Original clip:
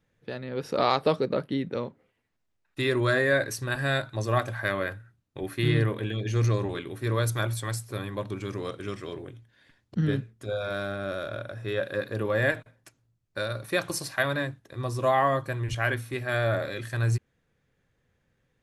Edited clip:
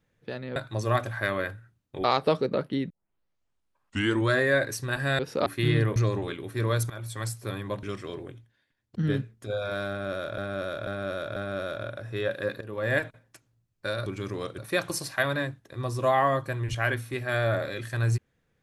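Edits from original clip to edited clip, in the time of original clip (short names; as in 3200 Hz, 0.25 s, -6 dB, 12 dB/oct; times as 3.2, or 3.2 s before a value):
0.56–0.83 swap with 3.98–5.46
1.69 tape start 1.40 s
5.96–6.43 cut
7.37–7.76 fade in, from -17.5 dB
8.3–8.82 move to 13.58
9.32–10.09 dip -17 dB, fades 0.34 s
10.88–11.37 loop, 4 plays
12.13–12.51 fade in, from -16 dB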